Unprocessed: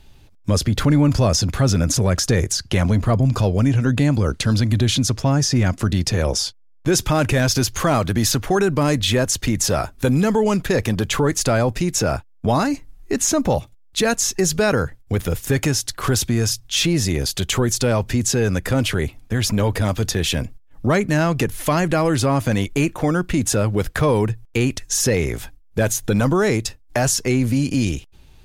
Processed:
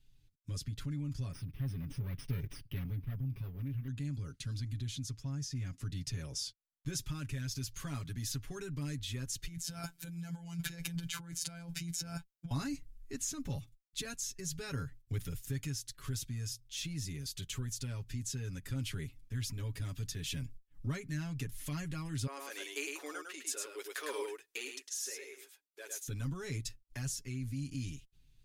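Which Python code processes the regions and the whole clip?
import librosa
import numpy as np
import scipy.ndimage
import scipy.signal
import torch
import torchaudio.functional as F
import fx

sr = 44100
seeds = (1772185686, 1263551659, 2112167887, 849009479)

y = fx.chain(x, sr, fx.lower_of_two(delay_ms=0.36),
    fx.air_absorb(metres=240.0),
    fx.resample_bad(factor=3, down='filtered', up='hold'), at=(1.32, 3.88))
y = fx.chain(y, sr, fx.highpass(hz=99.0, slope=24),
    fx.over_compress(threshold_db=-26.0, ratio=-1.0),
    fx.robotise(hz=170.0), at=(9.47, 12.51))
y = fx.chain(y, sr, fx.ellip_highpass(hz=370.0, order=4, stop_db=60),
    fx.echo_single(ms=105, db=-4.0), at=(22.27, 26.08))
y = fx.tone_stack(y, sr, knobs='6-0-2')
y = y + 0.78 * np.pad(y, (int(7.2 * sr / 1000.0), 0))[:len(y)]
y = fx.rider(y, sr, range_db=10, speed_s=0.5)
y = y * librosa.db_to_amplitude(-6.0)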